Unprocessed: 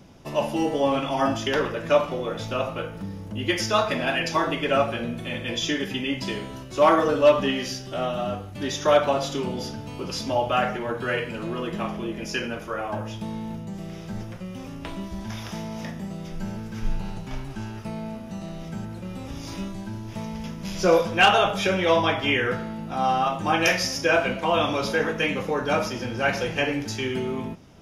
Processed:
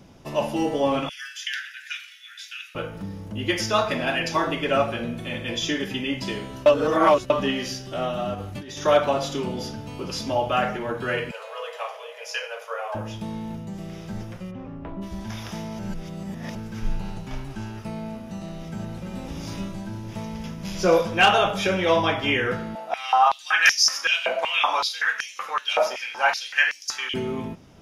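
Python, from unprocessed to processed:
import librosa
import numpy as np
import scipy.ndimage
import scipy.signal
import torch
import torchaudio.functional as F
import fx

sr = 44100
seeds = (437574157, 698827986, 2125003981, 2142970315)

y = fx.steep_highpass(x, sr, hz=1500.0, slope=96, at=(1.09, 2.75))
y = fx.over_compress(y, sr, threshold_db=-35.0, ratio=-1.0, at=(8.34, 8.78))
y = fx.cheby1_highpass(y, sr, hz=440.0, order=10, at=(11.31, 12.95))
y = fx.lowpass(y, sr, hz=fx.line((14.5, 1900.0), (15.01, 1000.0)), slope=12, at=(14.5, 15.01), fade=0.02)
y = fx.echo_throw(y, sr, start_s=18.45, length_s=0.66, ms=340, feedback_pct=70, wet_db=-5.0)
y = fx.filter_held_highpass(y, sr, hz=5.3, low_hz=670.0, high_hz=5500.0, at=(22.75, 27.14))
y = fx.edit(y, sr, fx.reverse_span(start_s=6.66, length_s=0.64),
    fx.reverse_span(start_s=15.79, length_s=0.76), tone=tone)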